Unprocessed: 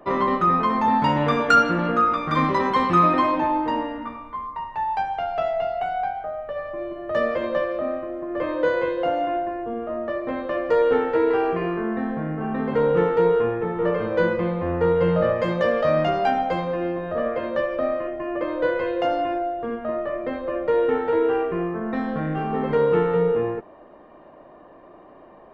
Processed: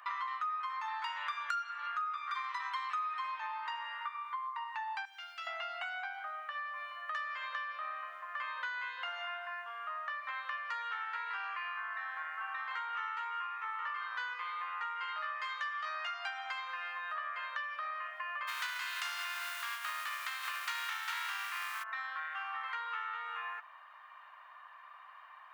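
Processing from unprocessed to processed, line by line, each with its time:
5.05–5.47 differentiator
12.69–16.14 doubler 18 ms -3 dB
18.47–21.82 spectral contrast lowered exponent 0.46
whole clip: steep high-pass 1100 Hz 36 dB/oct; compressor, threshold -41 dBFS; gain +4 dB

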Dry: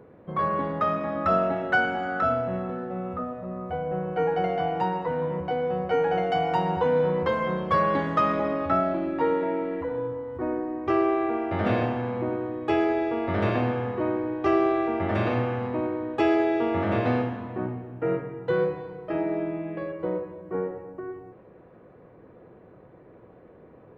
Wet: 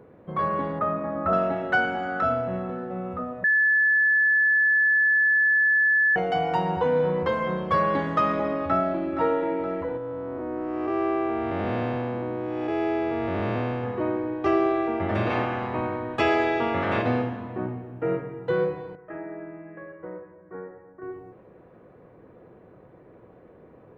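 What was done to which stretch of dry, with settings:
0.79–1.33 LPF 1500 Hz
3.44–6.16 bleep 1730 Hz -17 dBFS
8.65–9.06 echo throw 0.47 s, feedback 55%, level -9 dB
9.97–13.84 time blur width 0.389 s
15.29–17.01 spectral limiter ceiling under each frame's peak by 13 dB
18.95–21.02 ladder low-pass 2000 Hz, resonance 55%

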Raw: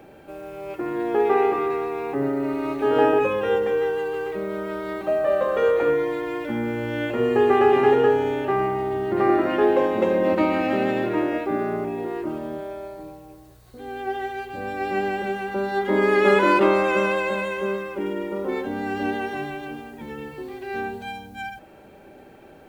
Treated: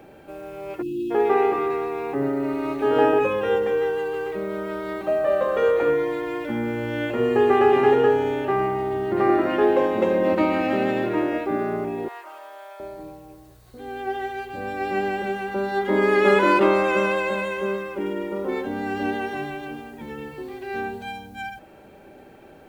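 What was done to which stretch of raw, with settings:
0.82–1.11 spectral delete 390–2500 Hz
12.08–12.8 HPF 750 Hz 24 dB/oct

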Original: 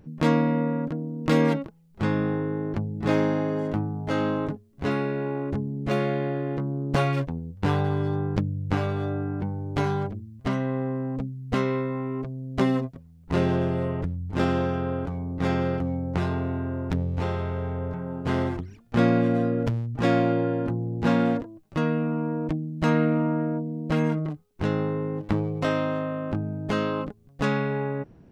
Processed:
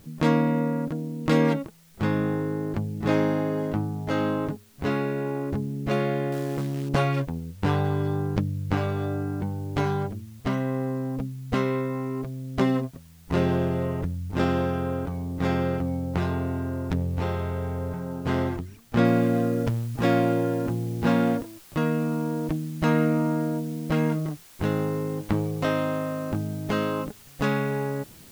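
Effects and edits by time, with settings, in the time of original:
6.32–6.89 short-mantissa float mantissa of 2-bit
19.05 noise floor step -59 dB -51 dB

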